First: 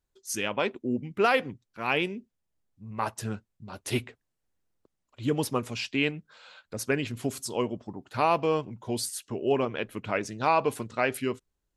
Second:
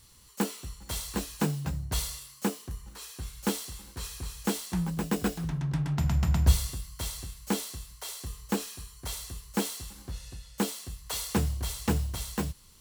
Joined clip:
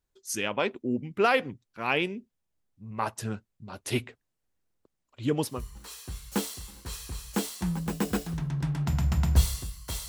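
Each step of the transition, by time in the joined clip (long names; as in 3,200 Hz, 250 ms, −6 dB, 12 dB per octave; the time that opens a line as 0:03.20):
first
0:05.53: continue with second from 0:02.64, crossfade 0.24 s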